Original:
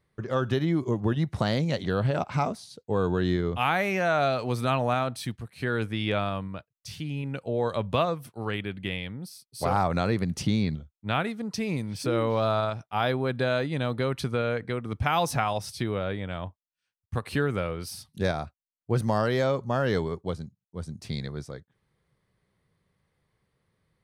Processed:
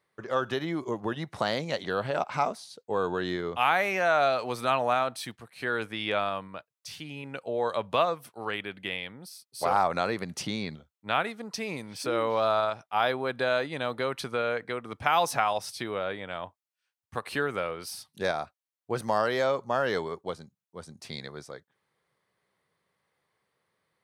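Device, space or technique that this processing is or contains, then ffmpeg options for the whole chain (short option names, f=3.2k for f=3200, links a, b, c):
filter by subtraction: -filter_complex "[0:a]asplit=2[a][b];[b]lowpass=820,volume=-1[c];[a][c]amix=inputs=2:normalize=0"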